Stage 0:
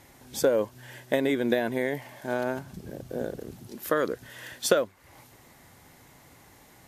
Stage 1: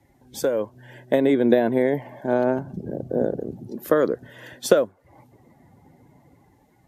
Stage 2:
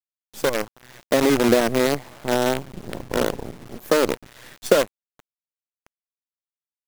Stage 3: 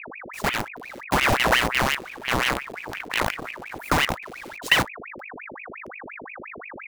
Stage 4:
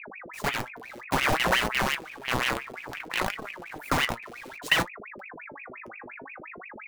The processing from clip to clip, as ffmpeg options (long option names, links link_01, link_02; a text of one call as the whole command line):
ffmpeg -i in.wav -filter_complex "[0:a]afftdn=noise_reduction=15:noise_floor=-51,acrossover=split=110|880|2400[link_01][link_02][link_03][link_04];[link_02]dynaudnorm=framelen=290:gausssize=7:maxgain=13dB[link_05];[link_01][link_05][link_03][link_04]amix=inputs=4:normalize=0,volume=-1dB" out.wav
ffmpeg -i in.wav -af "acrusher=bits=4:dc=4:mix=0:aa=0.000001" out.wav
ffmpeg -i in.wav -af "aeval=exprs='val(0)+0.0178*(sin(2*PI*50*n/s)+sin(2*PI*2*50*n/s)/2+sin(2*PI*3*50*n/s)/3+sin(2*PI*4*50*n/s)/4+sin(2*PI*5*50*n/s)/5)':channel_layout=same,aeval=exprs='val(0)*sin(2*PI*1400*n/s+1400*0.8/5.7*sin(2*PI*5.7*n/s))':channel_layout=same" out.wav
ffmpeg -i in.wav -af "flanger=delay=4.5:depth=4.5:regen=58:speed=0.59:shape=triangular" out.wav